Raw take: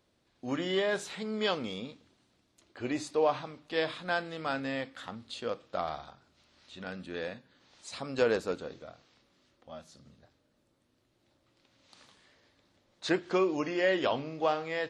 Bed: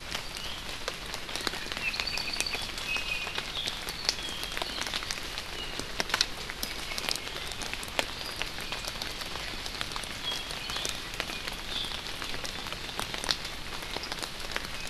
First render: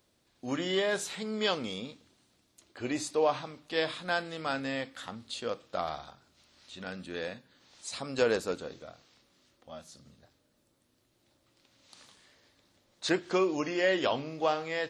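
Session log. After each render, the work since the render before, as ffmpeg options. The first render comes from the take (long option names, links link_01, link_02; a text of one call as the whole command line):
ffmpeg -i in.wav -af "highshelf=frequency=6200:gain=11" out.wav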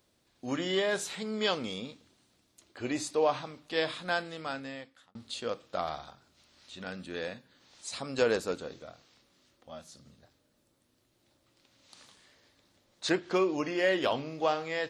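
ffmpeg -i in.wav -filter_complex "[0:a]asettb=1/sr,asplit=3[link_01][link_02][link_03];[link_01]atrim=end=13.124[link_04];[link_02]atrim=start=13.12:end=14.14,asetpts=PTS-STARTPTS,afade=type=in:duration=0.004:curve=qsin,afade=type=out:start_time=1.016:duration=0.004:curve=qsin,adynamicsmooth=sensitivity=6:basefreq=6700[link_05];[link_03]atrim=start=14.136[link_06];[link_04][link_05]acrossfade=duration=0.004:curve1=hsin:curve2=qsin[link_07];[link_07][link_06]acrossfade=duration=0.004:curve1=qsin:curve2=hsin,asplit=2[link_08][link_09];[link_08]atrim=end=5.15,asetpts=PTS-STARTPTS,afade=type=out:start_time=4.13:duration=1.02[link_10];[link_09]atrim=start=5.15,asetpts=PTS-STARTPTS,afade=type=in:duration=0.004:curve=hsin[link_11];[link_10][link_11]concat=n=2:v=0:a=1" out.wav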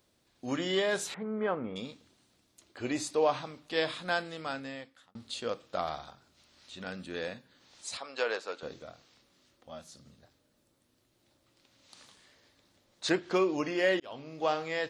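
ffmpeg -i in.wav -filter_complex "[0:a]asettb=1/sr,asplit=3[link_01][link_02][link_03];[link_01]atrim=end=1.144[link_04];[link_02]atrim=start=1.14:end=1.76,asetpts=PTS-STARTPTS,afade=type=in:duration=0.004:curve=qsin,afade=type=out:start_time=0.616:duration=0.004:curve=qsin,lowpass=frequency=1700:width=0.5412,lowpass=frequency=1700:width=1.3066[link_05];[link_03]atrim=start=1.756[link_06];[link_04][link_05]acrossfade=duration=0.004:curve1=hsin:curve2=qsin[link_07];[link_07][link_06]acrossfade=duration=0.004:curve1=qsin:curve2=hsin,asettb=1/sr,asplit=3[link_08][link_09][link_10];[link_08]atrim=end=7.974[link_11];[link_09]atrim=start=7.97:end=8.63,asetpts=PTS-STARTPTS,afade=type=in:duration=0.004:curve=qsin,afade=type=out:start_time=0.656:duration=0.004:curve=qsin,highpass=640,lowpass=4400[link_12];[link_10]atrim=start=8.626[link_13];[link_11][link_12]acrossfade=duration=0.004:curve1=hsin:curve2=qsin[link_14];[link_14][link_13]acrossfade=duration=0.004:curve1=qsin:curve2=hsin,asplit=2[link_15][link_16];[link_15]atrim=end=14,asetpts=PTS-STARTPTS,afade=type=out:start_time=13.996:duration=0.004:curve=hsin[link_17];[link_16]atrim=start=14,asetpts=PTS-STARTPTS,afade=type=in:duration=0.55[link_18];[link_17][link_18]concat=n=2:v=0:a=1" out.wav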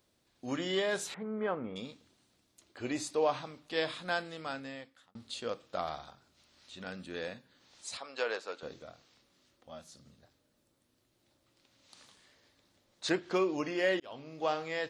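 ffmpeg -i in.wav -af "volume=-2.5dB" out.wav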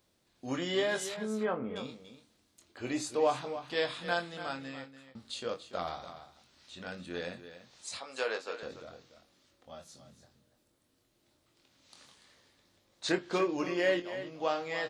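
ffmpeg -i in.wav -filter_complex "[0:a]asplit=2[link_01][link_02];[link_02]adelay=23,volume=-7dB[link_03];[link_01][link_03]amix=inputs=2:normalize=0,aecho=1:1:288:0.251" out.wav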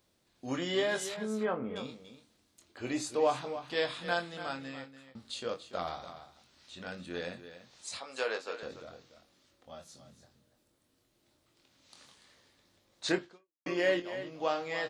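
ffmpeg -i in.wav -filter_complex "[0:a]asplit=2[link_01][link_02];[link_01]atrim=end=13.66,asetpts=PTS-STARTPTS,afade=type=out:start_time=13.24:duration=0.42:curve=exp[link_03];[link_02]atrim=start=13.66,asetpts=PTS-STARTPTS,afade=type=in:duration=0.004:curve=hsin[link_04];[link_03][link_04]concat=n=2:v=0:a=1" out.wav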